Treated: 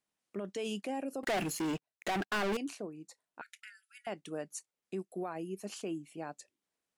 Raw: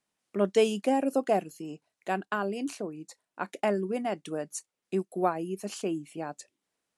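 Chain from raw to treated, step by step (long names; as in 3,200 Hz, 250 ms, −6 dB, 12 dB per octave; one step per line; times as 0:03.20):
brickwall limiter −23.5 dBFS, peak gain reduction 11.5 dB
0:01.23–0:02.57: leveller curve on the samples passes 5
0:03.41–0:04.07: linear-phase brick-wall high-pass 1,300 Hz
dynamic equaliser 2,500 Hz, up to +4 dB, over −44 dBFS, Q 0.85
level −6 dB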